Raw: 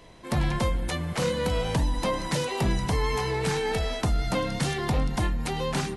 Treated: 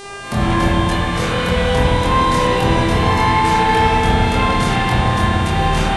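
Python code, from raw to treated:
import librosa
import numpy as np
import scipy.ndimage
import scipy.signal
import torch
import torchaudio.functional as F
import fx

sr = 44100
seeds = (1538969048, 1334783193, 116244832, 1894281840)

y = fx.doubler(x, sr, ms=24.0, db=-2.5)
y = fx.dmg_buzz(y, sr, base_hz=400.0, harmonics=25, level_db=-37.0, tilt_db=-4, odd_only=False)
y = fx.rev_spring(y, sr, rt60_s=3.6, pass_ms=(33, 52), chirp_ms=75, drr_db=-9.0)
y = y * 10.0 ** (2.0 / 20.0)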